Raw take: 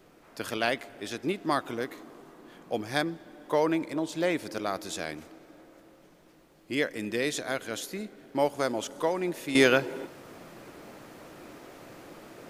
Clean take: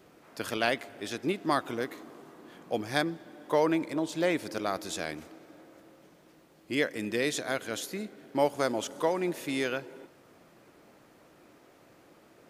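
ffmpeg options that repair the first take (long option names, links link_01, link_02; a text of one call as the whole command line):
ffmpeg -i in.wav -af "agate=range=-21dB:threshold=-47dB,asetnsamples=nb_out_samples=441:pad=0,asendcmd='9.55 volume volume -10.5dB',volume=0dB" out.wav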